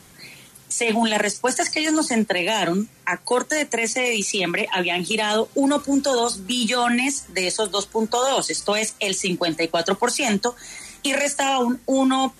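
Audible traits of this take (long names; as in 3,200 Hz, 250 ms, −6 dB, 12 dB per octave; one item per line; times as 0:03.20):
background noise floor −49 dBFS
spectral slope −2.5 dB per octave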